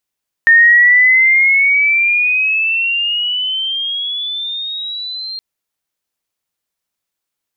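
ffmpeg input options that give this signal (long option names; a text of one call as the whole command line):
ffmpeg -f lavfi -i "aevalsrc='pow(10,(-4-18.5*t/4.92)/20)*sin(2*PI*1820*4.92/(14.5*log(2)/12)*(exp(14.5*log(2)/12*t/4.92)-1))':duration=4.92:sample_rate=44100" out.wav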